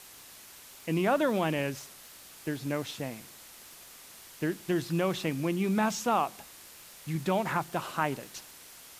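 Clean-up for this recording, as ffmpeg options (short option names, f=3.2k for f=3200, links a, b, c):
-af "adeclick=t=4,afwtdn=0.0035"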